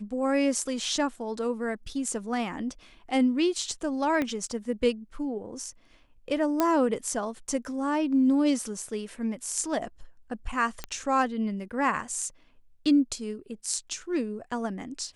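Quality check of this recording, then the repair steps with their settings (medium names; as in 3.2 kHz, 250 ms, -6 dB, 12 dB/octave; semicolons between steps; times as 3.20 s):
4.22 s: pop -16 dBFS
6.60 s: pop -10 dBFS
10.84 s: pop -17 dBFS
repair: de-click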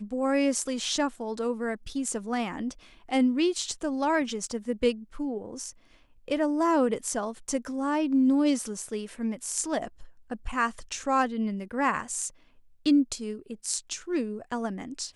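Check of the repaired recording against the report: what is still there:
4.22 s: pop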